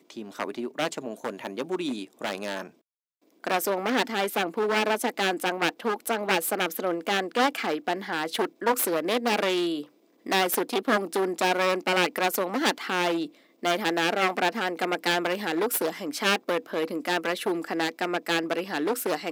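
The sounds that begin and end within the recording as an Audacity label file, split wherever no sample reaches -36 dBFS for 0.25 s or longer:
3.440000	9.830000	sound
10.260000	13.260000	sound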